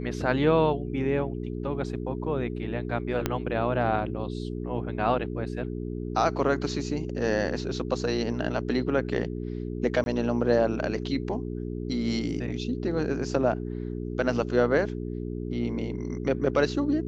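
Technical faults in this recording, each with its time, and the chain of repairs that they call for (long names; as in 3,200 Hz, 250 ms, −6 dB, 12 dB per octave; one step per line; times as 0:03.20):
mains hum 60 Hz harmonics 7 −33 dBFS
0:03.26: click −10 dBFS
0:10.04–0:10.06: drop-out 21 ms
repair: click removal
hum removal 60 Hz, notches 7
repair the gap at 0:10.04, 21 ms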